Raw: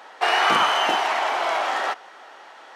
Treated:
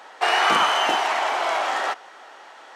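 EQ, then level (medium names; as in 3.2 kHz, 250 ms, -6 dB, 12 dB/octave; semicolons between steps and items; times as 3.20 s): high-pass 130 Hz; peaking EQ 7.7 kHz +3.5 dB 0.7 oct; 0.0 dB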